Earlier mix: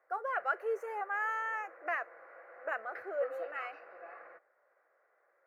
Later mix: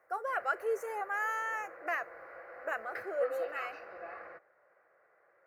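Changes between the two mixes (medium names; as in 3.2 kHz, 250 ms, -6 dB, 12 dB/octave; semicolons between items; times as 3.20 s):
background +4.0 dB; master: add tone controls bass +14 dB, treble +13 dB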